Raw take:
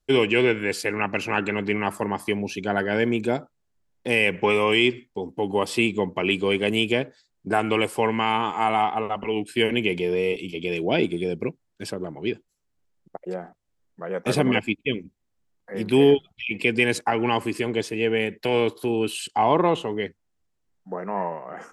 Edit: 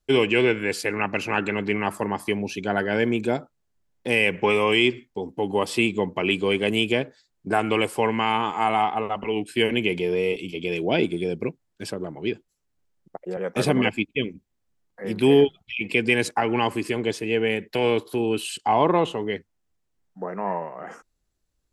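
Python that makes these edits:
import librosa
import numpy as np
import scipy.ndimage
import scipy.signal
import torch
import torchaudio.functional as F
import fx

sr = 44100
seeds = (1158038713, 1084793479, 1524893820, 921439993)

y = fx.edit(x, sr, fx.cut(start_s=13.37, length_s=0.7), tone=tone)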